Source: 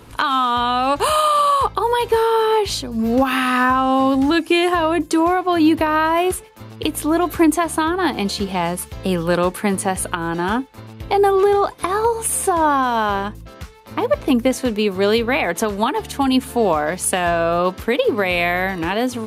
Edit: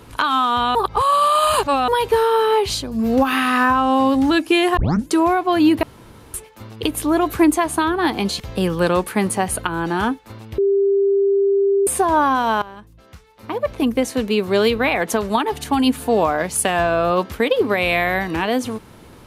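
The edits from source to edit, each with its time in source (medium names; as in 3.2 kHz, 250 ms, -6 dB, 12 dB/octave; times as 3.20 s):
0.75–1.88 s: reverse
4.77 s: tape start 0.31 s
5.83–6.34 s: room tone
8.40–8.88 s: delete
11.06–12.35 s: bleep 396 Hz -13 dBFS
13.10–14.87 s: fade in, from -18.5 dB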